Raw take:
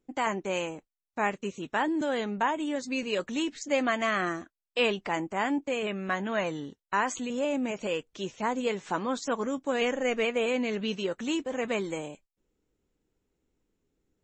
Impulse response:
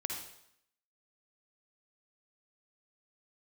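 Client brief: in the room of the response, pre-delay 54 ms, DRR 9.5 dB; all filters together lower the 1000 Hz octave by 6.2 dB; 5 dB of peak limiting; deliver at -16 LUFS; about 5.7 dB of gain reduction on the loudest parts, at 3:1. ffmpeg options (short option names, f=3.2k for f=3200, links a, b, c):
-filter_complex "[0:a]equalizer=f=1k:t=o:g=-8,acompressor=threshold=-31dB:ratio=3,alimiter=level_in=2.5dB:limit=-24dB:level=0:latency=1,volume=-2.5dB,asplit=2[a][b];[1:a]atrim=start_sample=2205,adelay=54[c];[b][c]afir=irnorm=-1:irlink=0,volume=-11dB[d];[a][d]amix=inputs=2:normalize=0,volume=20dB"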